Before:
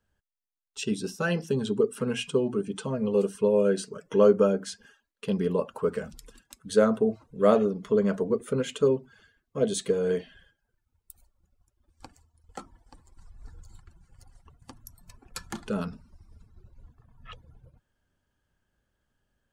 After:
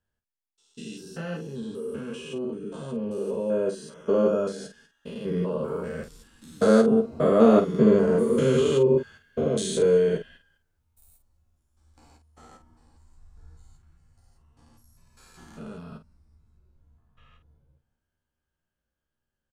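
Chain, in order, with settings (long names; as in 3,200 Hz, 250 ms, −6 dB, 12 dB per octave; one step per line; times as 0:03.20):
spectrum averaged block by block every 200 ms
source passing by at 0:08.30, 5 m/s, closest 7.4 metres
ambience of single reflections 13 ms −4.5 dB, 51 ms −8.5 dB
level +8.5 dB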